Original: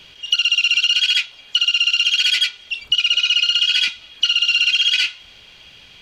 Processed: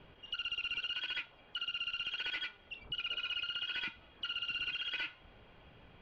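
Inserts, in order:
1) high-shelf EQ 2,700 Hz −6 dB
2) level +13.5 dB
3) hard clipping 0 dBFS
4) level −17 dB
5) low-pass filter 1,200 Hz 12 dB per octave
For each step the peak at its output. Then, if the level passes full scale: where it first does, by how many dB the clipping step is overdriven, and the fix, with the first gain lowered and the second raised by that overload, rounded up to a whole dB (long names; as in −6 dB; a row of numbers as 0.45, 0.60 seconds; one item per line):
−8.0, +5.5, 0.0, −17.0, −27.0 dBFS
step 2, 5.5 dB
step 2 +7.5 dB, step 4 −11 dB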